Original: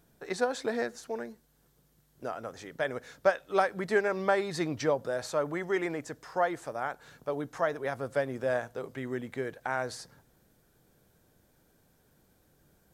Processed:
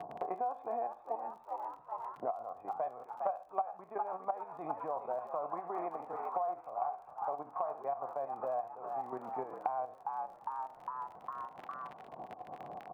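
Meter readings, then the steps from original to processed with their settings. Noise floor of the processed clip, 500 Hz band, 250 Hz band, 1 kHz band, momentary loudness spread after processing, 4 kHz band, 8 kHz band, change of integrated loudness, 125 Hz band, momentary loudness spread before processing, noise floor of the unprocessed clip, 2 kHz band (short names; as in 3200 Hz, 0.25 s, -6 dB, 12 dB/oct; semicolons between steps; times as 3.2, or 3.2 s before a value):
-56 dBFS, -9.0 dB, -15.0 dB, +0.5 dB, 7 LU, under -20 dB, under -25 dB, -7.5 dB, -18.5 dB, 11 LU, -68 dBFS, -22.0 dB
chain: spectral trails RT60 0.31 s; low-pass opened by the level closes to 900 Hz, open at -24.5 dBFS; level quantiser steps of 11 dB; vocal tract filter a; vibrato 12 Hz 28 cents; crackle 25/s -64 dBFS; on a send: frequency-shifting echo 0.406 s, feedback 44%, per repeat +76 Hz, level -10.5 dB; on the sum: three-band squash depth 100%; gain +9.5 dB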